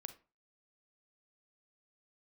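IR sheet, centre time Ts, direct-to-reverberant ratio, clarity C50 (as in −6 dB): 6 ms, 10.0 dB, 13.0 dB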